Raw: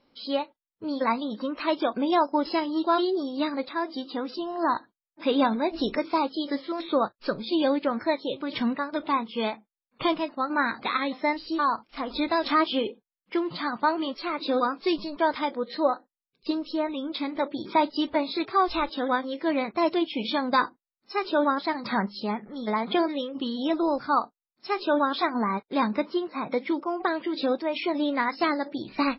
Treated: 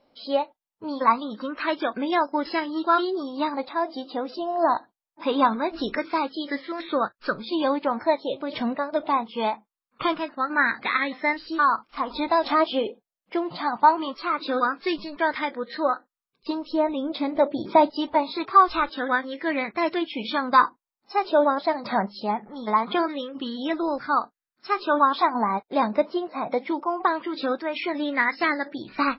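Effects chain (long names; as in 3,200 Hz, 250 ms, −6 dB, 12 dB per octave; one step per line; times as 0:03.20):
0:16.72–0:17.90: low-shelf EQ 290 Hz +9 dB
auto-filter bell 0.23 Hz 650–1,900 Hz +11 dB
level −1.5 dB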